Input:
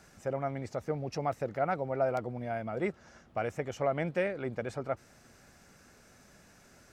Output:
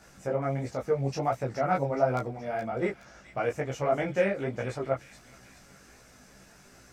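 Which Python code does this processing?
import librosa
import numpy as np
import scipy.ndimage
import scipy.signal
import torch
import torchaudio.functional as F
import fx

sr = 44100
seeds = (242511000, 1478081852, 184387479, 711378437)

y = fx.doubler(x, sr, ms=15.0, db=-4.5)
y = fx.chorus_voices(y, sr, voices=2, hz=1.4, base_ms=19, depth_ms=3.2, mix_pct=45)
y = fx.echo_wet_highpass(y, sr, ms=421, feedback_pct=49, hz=3200.0, wet_db=-7)
y = F.gain(torch.from_numpy(y), 5.5).numpy()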